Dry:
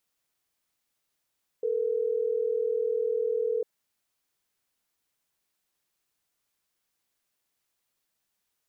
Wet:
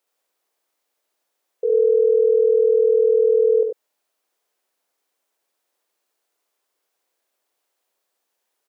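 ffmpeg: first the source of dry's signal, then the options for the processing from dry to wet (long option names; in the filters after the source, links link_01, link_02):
-f lavfi -i "aevalsrc='0.0422*(sin(2*PI*440*t)+sin(2*PI*480*t))*clip(min(mod(t,6),2-mod(t,6))/0.005,0,1)':duration=3.12:sample_rate=44100"
-filter_complex "[0:a]highpass=370,equalizer=frequency=490:width_type=o:width=2.2:gain=10,asplit=2[link_01][link_02];[link_02]aecho=0:1:66|96:0.668|0.473[link_03];[link_01][link_03]amix=inputs=2:normalize=0"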